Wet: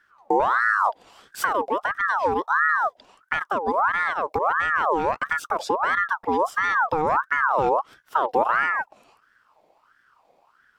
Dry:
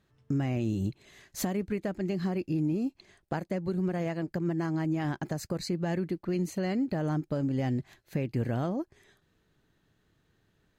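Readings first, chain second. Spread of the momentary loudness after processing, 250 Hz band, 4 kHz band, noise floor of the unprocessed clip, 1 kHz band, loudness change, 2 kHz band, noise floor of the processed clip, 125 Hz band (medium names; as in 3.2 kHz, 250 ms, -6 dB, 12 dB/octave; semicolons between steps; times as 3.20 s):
6 LU, -6.0 dB, +5.5 dB, -72 dBFS, +21.5 dB, +9.0 dB, +22.0 dB, -64 dBFS, -14.0 dB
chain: bass shelf 260 Hz +10 dB; ring modulator with a swept carrier 1.1 kHz, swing 45%, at 1.5 Hz; trim +5 dB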